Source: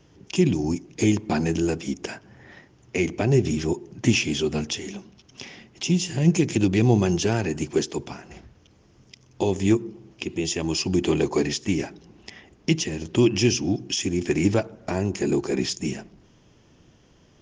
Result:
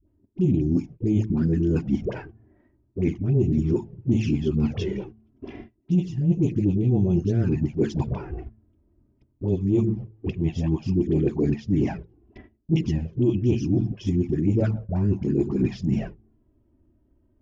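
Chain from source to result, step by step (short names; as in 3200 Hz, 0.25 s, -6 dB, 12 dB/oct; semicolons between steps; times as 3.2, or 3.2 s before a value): dispersion highs, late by 78 ms, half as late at 580 Hz; gate -43 dBFS, range -19 dB; low-pass opened by the level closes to 1800 Hz, open at -17 dBFS; LPF 3300 Hz 6 dB/oct; low shelf 370 Hz +7.5 dB; de-hum 109.7 Hz, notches 2; envelope flanger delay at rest 3.2 ms, full sweep at -11.5 dBFS; tilt shelf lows +6.5 dB, about 680 Hz; reverse; compressor 5:1, threshold -26 dBFS, peak gain reduction 21 dB; reverse; gain +5.5 dB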